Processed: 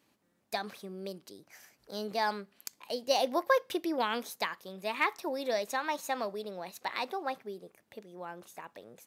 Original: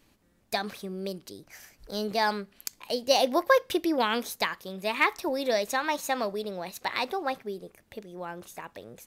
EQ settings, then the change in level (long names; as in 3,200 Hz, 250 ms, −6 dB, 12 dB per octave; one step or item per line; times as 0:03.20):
high-pass filter 140 Hz 12 dB per octave
parametric band 900 Hz +2.5 dB 1.5 octaves
−6.5 dB